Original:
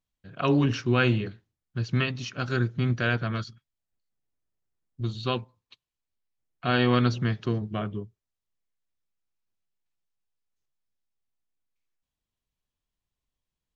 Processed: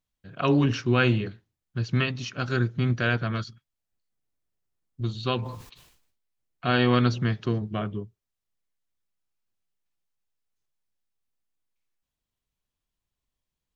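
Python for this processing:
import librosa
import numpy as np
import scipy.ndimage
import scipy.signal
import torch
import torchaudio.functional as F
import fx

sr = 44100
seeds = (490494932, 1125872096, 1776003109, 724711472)

y = fx.sustainer(x, sr, db_per_s=64.0, at=(5.37, 6.71), fade=0.02)
y = y * 10.0 ** (1.0 / 20.0)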